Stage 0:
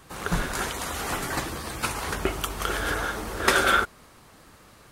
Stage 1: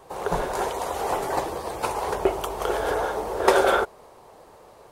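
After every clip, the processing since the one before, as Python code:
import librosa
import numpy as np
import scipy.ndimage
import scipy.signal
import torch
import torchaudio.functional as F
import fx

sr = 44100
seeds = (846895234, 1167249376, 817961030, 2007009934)

y = fx.band_shelf(x, sr, hz=610.0, db=14.0, octaves=1.7)
y = F.gain(torch.from_numpy(y), -5.0).numpy()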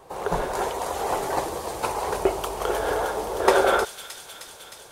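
y = fx.echo_wet_highpass(x, sr, ms=310, feedback_pct=74, hz=4000.0, wet_db=-3.5)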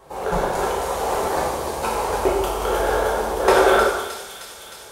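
y = fx.rev_plate(x, sr, seeds[0], rt60_s=1.1, hf_ratio=0.8, predelay_ms=0, drr_db=-4.0)
y = F.gain(torch.from_numpy(y), -1.0).numpy()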